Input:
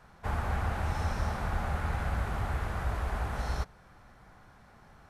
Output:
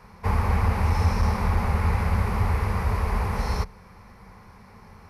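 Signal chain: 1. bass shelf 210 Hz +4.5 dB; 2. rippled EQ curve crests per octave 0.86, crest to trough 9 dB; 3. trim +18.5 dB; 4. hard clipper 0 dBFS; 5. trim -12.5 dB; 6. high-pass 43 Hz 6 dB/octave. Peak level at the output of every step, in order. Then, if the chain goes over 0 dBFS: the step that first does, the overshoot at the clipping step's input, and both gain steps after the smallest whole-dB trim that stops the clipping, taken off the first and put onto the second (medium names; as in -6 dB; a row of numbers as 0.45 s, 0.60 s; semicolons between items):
-15.5 dBFS, -14.5 dBFS, +4.0 dBFS, 0.0 dBFS, -12.5 dBFS, -10.5 dBFS; step 3, 4.0 dB; step 3 +14.5 dB, step 5 -8.5 dB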